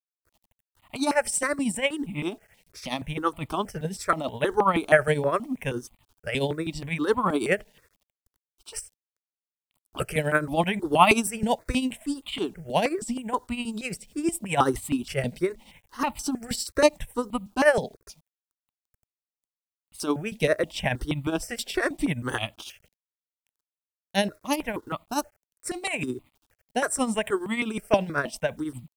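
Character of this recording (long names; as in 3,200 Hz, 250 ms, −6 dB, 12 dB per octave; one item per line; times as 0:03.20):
tremolo triangle 12 Hz, depth 75%
a quantiser's noise floor 12 bits, dither none
notches that jump at a steady rate 6.3 Hz 330–1,600 Hz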